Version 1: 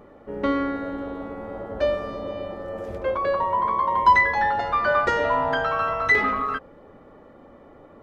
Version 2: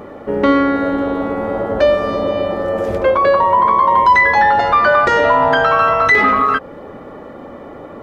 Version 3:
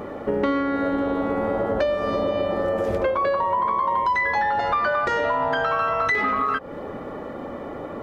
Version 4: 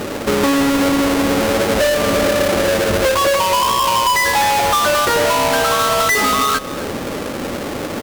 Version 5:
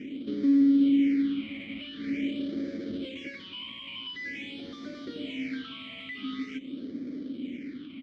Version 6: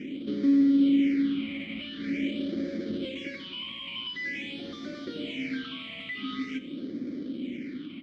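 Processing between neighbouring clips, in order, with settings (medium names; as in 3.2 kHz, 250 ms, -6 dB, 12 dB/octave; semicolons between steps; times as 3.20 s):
bass shelf 61 Hz -10 dB; in parallel at +2 dB: compression, threshold -31 dBFS, peak gain reduction 18 dB; on the sum: loudness maximiser +11 dB; trim -2.5 dB
compression, threshold -20 dBFS, peak gain reduction 12.5 dB
square wave that keeps the level; valve stage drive 17 dB, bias 0.25; delay 256 ms -16 dB; trim +6 dB
phase shifter stages 6, 0.46 Hz, lowest notch 400–2700 Hz; vowel filter i; distance through air 110 m; trim -3.5 dB
simulated room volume 3400 m³, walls furnished, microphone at 0.91 m; trim +2.5 dB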